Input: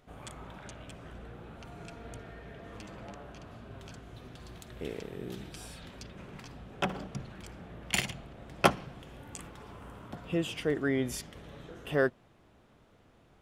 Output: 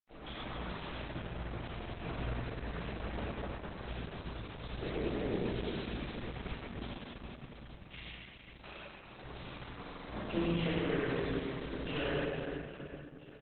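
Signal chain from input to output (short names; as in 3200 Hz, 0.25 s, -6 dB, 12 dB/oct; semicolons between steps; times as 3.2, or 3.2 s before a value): high shelf 2000 Hz +4 dB; compressor 16:1, threshold -38 dBFS, peak gain reduction 23.5 dB; crossover distortion -46 dBFS; 6.66–9.07 ladder low-pass 5900 Hz, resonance 75%; reverse bouncing-ball echo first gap 0.1 s, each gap 1.5×, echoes 5; reverb RT60 2.7 s, pre-delay 4 ms, DRR -14.5 dB; stuck buffer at 1.76/9.81, samples 2048, times 5; gain -3 dB; Opus 8 kbps 48000 Hz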